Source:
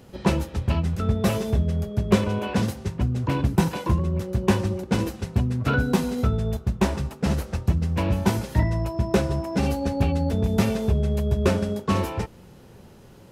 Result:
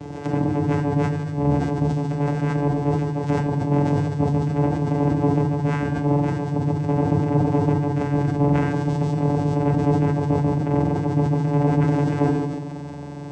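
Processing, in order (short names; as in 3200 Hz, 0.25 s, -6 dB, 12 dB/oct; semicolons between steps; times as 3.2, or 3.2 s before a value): spectrum mirrored in octaves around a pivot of 1700 Hz; treble ducked by the level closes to 1900 Hz, closed at -29 dBFS; tilt -2.5 dB/oct; negative-ratio compressor -35 dBFS, ratio -0.5; painted sound rise, 11.46–12.12, 500–4400 Hz -49 dBFS; small resonant body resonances 320/570/1600 Hz, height 15 dB, ringing for 45 ms; buzz 400 Hz, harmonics 16, -45 dBFS -1 dB/oct; vocoder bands 4, saw 144 Hz; on a send: reverse echo 0.81 s -21.5 dB; on the sum: FDN reverb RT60 1.4 s, low-frequency decay 1.55×, high-frequency decay 0.75×, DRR 1.5 dB; sustainer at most 35 dB/s; gain +5 dB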